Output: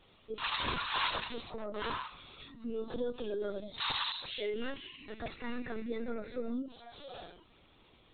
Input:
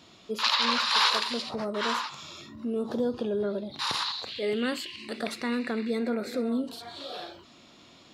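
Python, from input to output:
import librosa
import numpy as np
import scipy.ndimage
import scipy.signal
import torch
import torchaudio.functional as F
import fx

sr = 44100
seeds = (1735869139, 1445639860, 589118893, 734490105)

y = fx.high_shelf(x, sr, hz=2200.0, db=11.5, at=(2.39, 4.49), fade=0.02)
y = fx.lpc_vocoder(y, sr, seeds[0], excitation='pitch_kept', order=16)
y = y * 10.0 ** (-8.0 / 20.0)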